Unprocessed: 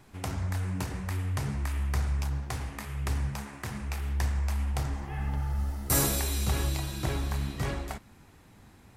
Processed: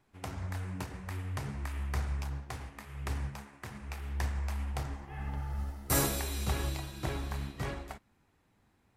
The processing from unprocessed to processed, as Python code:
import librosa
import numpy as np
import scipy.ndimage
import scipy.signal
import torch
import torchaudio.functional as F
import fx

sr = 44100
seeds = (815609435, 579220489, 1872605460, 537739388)

y = fx.bass_treble(x, sr, bass_db=-3, treble_db=-4)
y = fx.upward_expand(y, sr, threshold_db=-52.0, expansion=1.5)